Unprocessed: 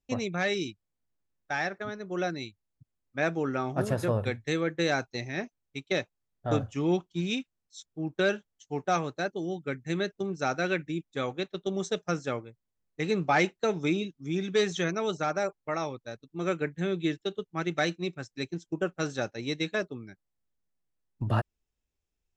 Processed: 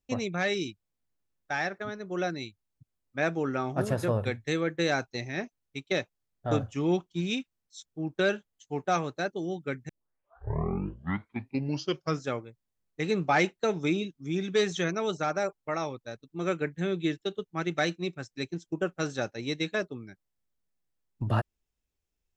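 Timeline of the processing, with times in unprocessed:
8.26–8.92 s: band-stop 5.6 kHz
9.89 s: tape start 2.41 s

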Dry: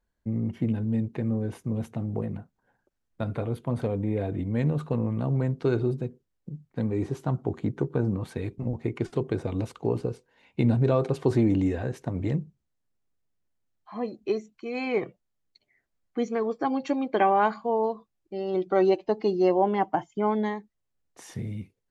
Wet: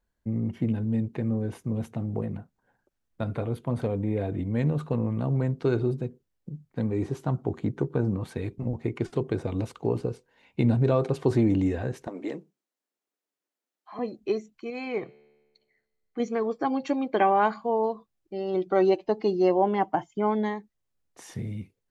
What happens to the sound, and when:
12.07–13.99 s: high-pass 280 Hz 24 dB/octave
14.70–16.20 s: feedback comb 73 Hz, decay 1.4 s, mix 40%

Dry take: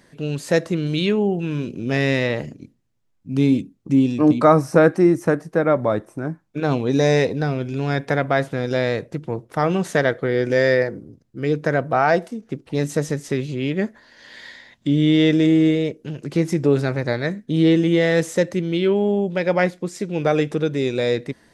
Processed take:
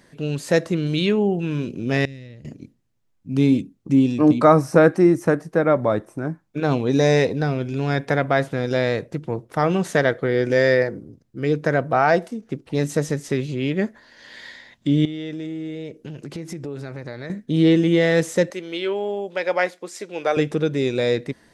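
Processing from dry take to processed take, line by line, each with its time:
2.05–2.45 s: amplifier tone stack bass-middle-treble 10-0-1
15.05–17.30 s: compression 4:1, threshold -30 dBFS
18.50–20.37 s: high-pass 500 Hz

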